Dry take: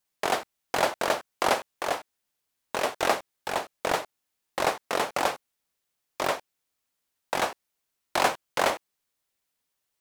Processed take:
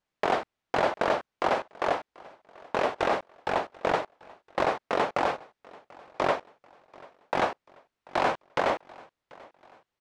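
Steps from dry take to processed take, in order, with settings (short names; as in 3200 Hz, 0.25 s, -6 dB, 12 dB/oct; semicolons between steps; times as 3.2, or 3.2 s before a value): limiter -16 dBFS, peak gain reduction 8.5 dB; tape spacing loss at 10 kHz 24 dB; feedback echo 0.738 s, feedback 45%, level -23.5 dB; gain +5.5 dB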